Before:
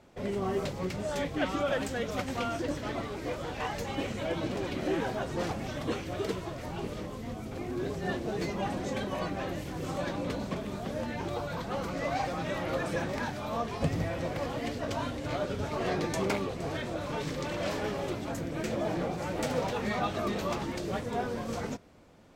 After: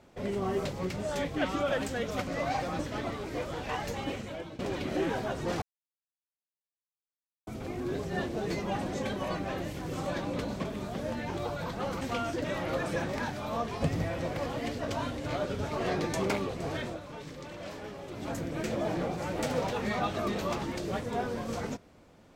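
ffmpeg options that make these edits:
ffmpeg -i in.wav -filter_complex "[0:a]asplit=10[link_01][link_02][link_03][link_04][link_05][link_06][link_07][link_08][link_09][link_10];[link_01]atrim=end=2.272[link_11];[link_02]atrim=start=11.918:end=12.442[link_12];[link_03]atrim=start=2.698:end=4.5,asetpts=PTS-STARTPTS,afade=type=out:start_time=1.182:duration=0.62:silence=0.158489[link_13];[link_04]atrim=start=4.5:end=5.53,asetpts=PTS-STARTPTS,afade=type=in:duration=0.004:curve=hsin:silence=0.158489,afade=type=out:start_time=1.026:duration=0.004:curve=hsin[link_14];[link_05]atrim=start=5.53:end=7.38,asetpts=PTS-STARTPTS,volume=0[link_15];[link_06]atrim=start=7.38:end=11.922,asetpts=PTS-STARTPTS,afade=type=in:duration=0.004:curve=hsin[link_16];[link_07]atrim=start=2.268:end=2.702[link_17];[link_08]atrim=start=12.438:end=17.01,asetpts=PTS-STARTPTS,afade=type=out:start_time=4.422:duration=0.15:silence=0.354813[link_18];[link_09]atrim=start=17.01:end=18.11,asetpts=PTS-STARTPTS,volume=-9dB[link_19];[link_10]atrim=start=18.11,asetpts=PTS-STARTPTS,afade=type=in:duration=0.15:silence=0.354813[link_20];[link_11][link_12]acrossfade=duration=0.004:curve1=hsin:curve2=hsin[link_21];[link_13][link_14][link_15][link_16]concat=n=4:v=0:a=1[link_22];[link_21][link_22]acrossfade=duration=0.004:curve1=hsin:curve2=hsin[link_23];[link_23][link_17]acrossfade=duration=0.004:curve1=hsin:curve2=hsin[link_24];[link_18][link_19][link_20]concat=n=3:v=0:a=1[link_25];[link_24][link_25]acrossfade=duration=0.004:curve1=hsin:curve2=hsin" out.wav

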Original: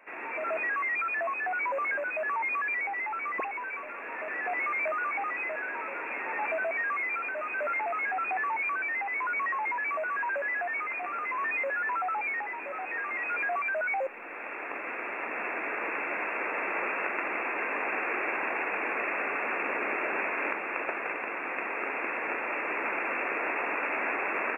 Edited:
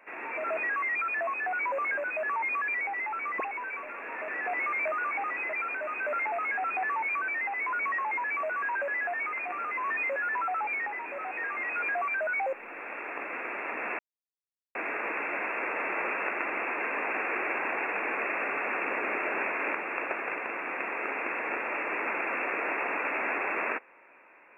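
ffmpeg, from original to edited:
ffmpeg -i in.wav -filter_complex "[0:a]asplit=3[link_01][link_02][link_03];[link_01]atrim=end=5.532[link_04];[link_02]atrim=start=7.068:end=15.53,asetpts=PTS-STARTPTS,afade=type=out:start_time=8.458:duration=0.004:curve=hsin,apad=pad_dur=0.76[link_05];[link_03]atrim=start=15.53,asetpts=PTS-STARTPTS,afade=type=in:duration=0.004:curve=hsin[link_06];[link_05][link_06]concat=n=2:v=0:a=1[link_07];[link_04][link_07]acrossfade=duration=0.004:curve1=hsin:curve2=hsin" out.wav

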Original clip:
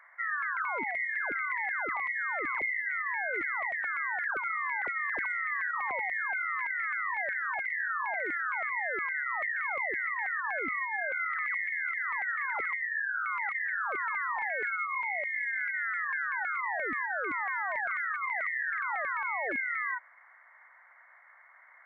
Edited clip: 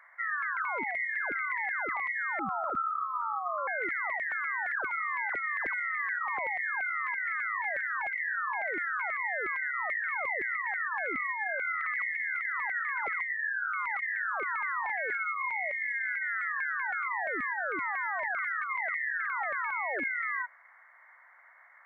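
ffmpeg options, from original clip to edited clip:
ffmpeg -i in.wav -filter_complex "[0:a]asplit=3[link_01][link_02][link_03];[link_01]atrim=end=2.394[link_04];[link_02]atrim=start=2.39:end=3.2,asetpts=PTS-STARTPTS,asetrate=27783,aresample=44100[link_05];[link_03]atrim=start=3.196[link_06];[link_04][link_05]acrossfade=duration=0.004:curve1=hsin:curve2=hsin[link_07];[link_07][link_06]acrossfade=duration=0.004:curve1=hsin:curve2=hsin" out.wav

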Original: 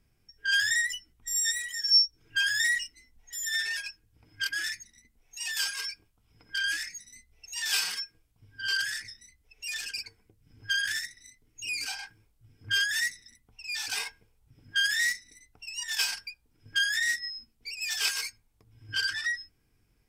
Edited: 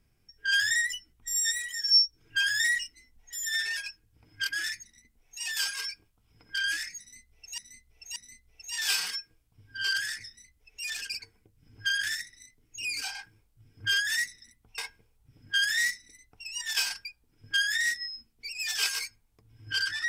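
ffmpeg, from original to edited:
ffmpeg -i in.wav -filter_complex "[0:a]asplit=4[link_01][link_02][link_03][link_04];[link_01]atrim=end=7.582[link_05];[link_02]atrim=start=6.998:end=7.582[link_06];[link_03]atrim=start=6.998:end=13.622[link_07];[link_04]atrim=start=13.998[link_08];[link_05][link_06]acrossfade=duration=0.004:curve1=hsin:curve2=hsin[link_09];[link_09][link_07]acrossfade=duration=0.004:curve1=hsin:curve2=hsin[link_10];[link_10][link_08]acrossfade=duration=0.004:curve1=hsin:curve2=hsin" out.wav

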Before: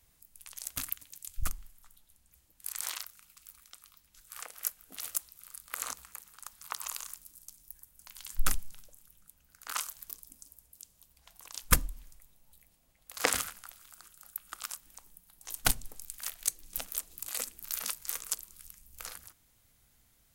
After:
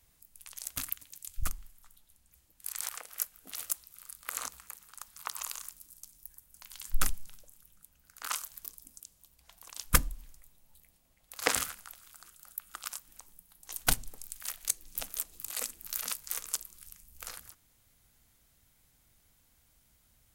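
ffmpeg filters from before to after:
ffmpeg -i in.wav -filter_complex "[0:a]asplit=3[link_01][link_02][link_03];[link_01]atrim=end=2.892[link_04];[link_02]atrim=start=4.338:end=10.452[link_05];[link_03]atrim=start=10.778[link_06];[link_04][link_05]acrossfade=duration=0.004:curve1=hsin:curve2=hsin[link_07];[link_07][link_06]acrossfade=duration=0.004:curve1=hsin:curve2=hsin" out.wav

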